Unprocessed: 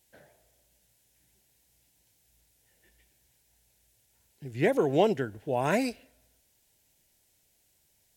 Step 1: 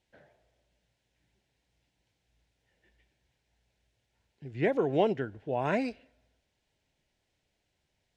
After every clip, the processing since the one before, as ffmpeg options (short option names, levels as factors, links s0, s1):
-af "lowpass=3500,volume=0.75"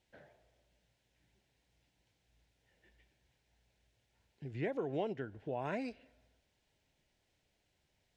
-af "acompressor=threshold=0.00794:ratio=2"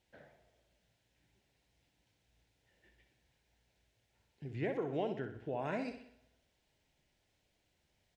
-af "aecho=1:1:62|124|186|248|310|372:0.355|0.174|0.0852|0.0417|0.0205|0.01"